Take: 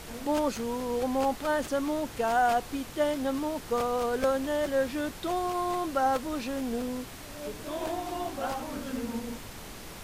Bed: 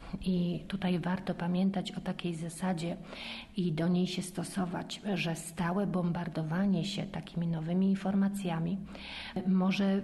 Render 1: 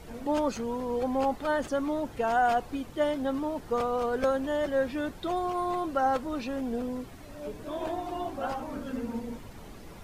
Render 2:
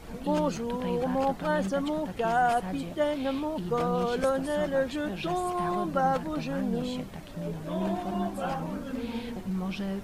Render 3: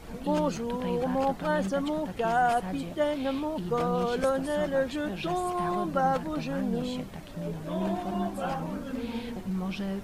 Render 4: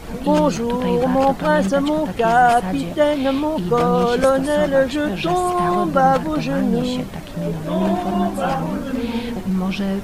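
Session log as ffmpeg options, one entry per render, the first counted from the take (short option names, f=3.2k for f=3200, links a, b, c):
-af "afftdn=nr=11:nf=-44"
-filter_complex "[1:a]volume=-4dB[a];[0:a][a]amix=inputs=2:normalize=0"
-af anull
-af "volume=11dB"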